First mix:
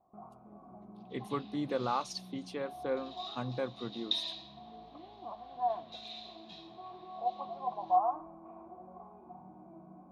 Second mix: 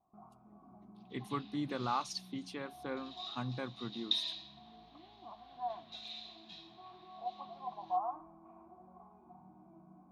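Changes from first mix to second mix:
first sound -4.0 dB; master: add peaking EQ 510 Hz -10 dB 0.71 oct

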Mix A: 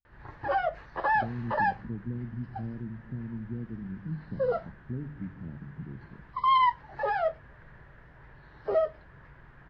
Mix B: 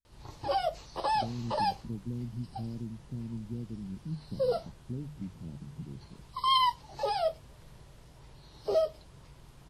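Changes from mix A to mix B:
background: remove resonant low-pass 1.7 kHz, resonance Q 6.1; reverb: off

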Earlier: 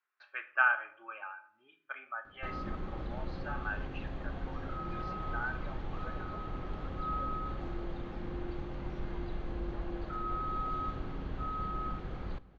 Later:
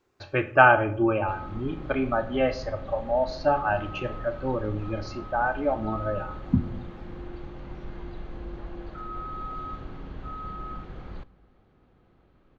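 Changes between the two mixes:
speech: remove ladder band-pass 1.8 kHz, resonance 40%; background: entry -1.15 s

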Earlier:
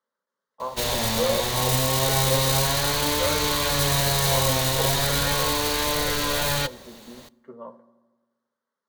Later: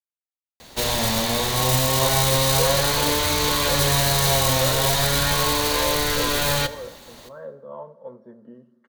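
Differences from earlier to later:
speech: entry +1.40 s; background: send +11.0 dB

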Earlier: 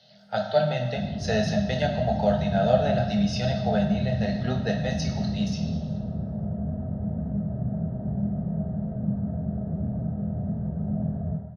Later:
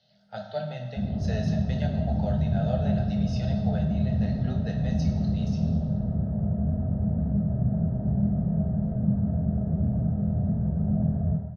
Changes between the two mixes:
speech -10.5 dB; master: add bass shelf 120 Hz +8.5 dB

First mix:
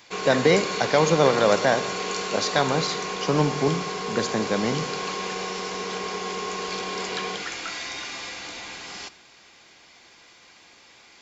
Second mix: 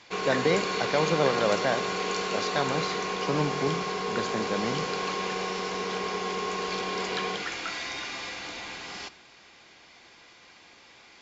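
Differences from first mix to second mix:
speech -6.0 dB; master: add distance through air 70 m

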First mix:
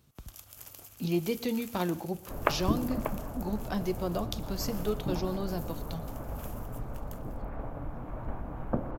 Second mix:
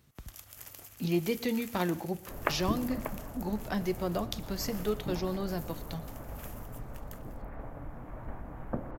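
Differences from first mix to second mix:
second sound -4.5 dB; master: add peaking EQ 1.9 kHz +6.5 dB 0.47 oct

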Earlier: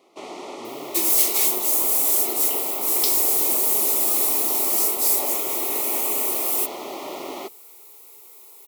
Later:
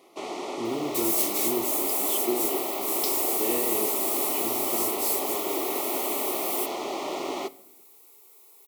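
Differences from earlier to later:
speech +9.0 dB; second sound -10.5 dB; reverb: on, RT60 0.90 s

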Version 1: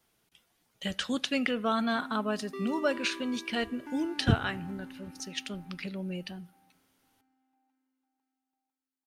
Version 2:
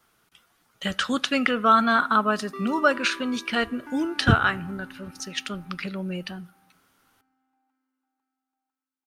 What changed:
speech +5.0 dB; master: add peaking EQ 1.3 kHz +10.5 dB 0.66 oct

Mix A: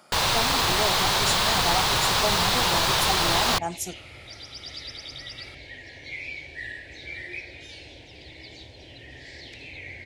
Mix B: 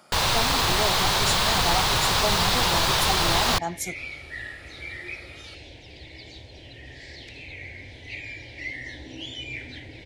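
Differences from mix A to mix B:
second sound: entry -2.25 s; master: add bass shelf 97 Hz +5.5 dB

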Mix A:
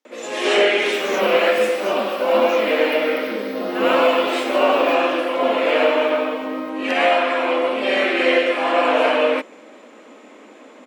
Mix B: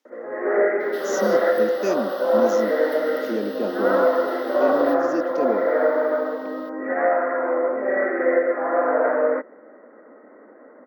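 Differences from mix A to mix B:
speech +6.0 dB; first sound: add rippled Chebyshev low-pass 2 kHz, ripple 6 dB; reverb: off

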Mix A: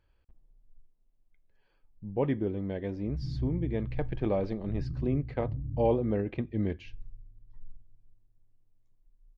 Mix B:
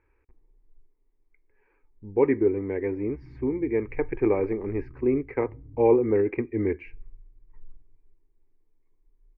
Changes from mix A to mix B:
background -9.5 dB; master: add FFT filter 110 Hz 0 dB, 170 Hz -10 dB, 260 Hz +5 dB, 420 Hz +13 dB, 630 Hz -5 dB, 900 Hz +8 dB, 1.5 kHz +4 dB, 2.3 kHz +12 dB, 3.3 kHz -21 dB

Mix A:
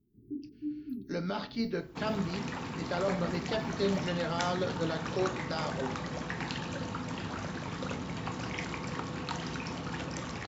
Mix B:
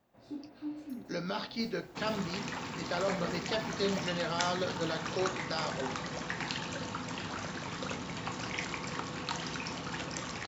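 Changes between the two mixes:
first sound: remove brick-wall FIR band-stop 440–11000 Hz; master: add tilt EQ +1.5 dB/octave

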